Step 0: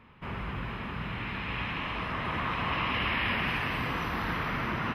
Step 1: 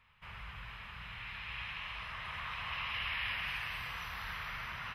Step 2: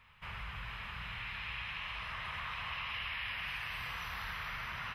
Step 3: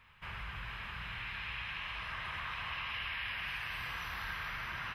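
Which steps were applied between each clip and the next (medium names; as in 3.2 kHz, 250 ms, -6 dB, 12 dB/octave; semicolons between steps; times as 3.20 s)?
amplifier tone stack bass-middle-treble 10-0-10; trim -2.5 dB
compression 3:1, threshold -44 dBFS, peak gain reduction 8 dB; trim +5 dB
small resonant body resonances 320/1600 Hz, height 8 dB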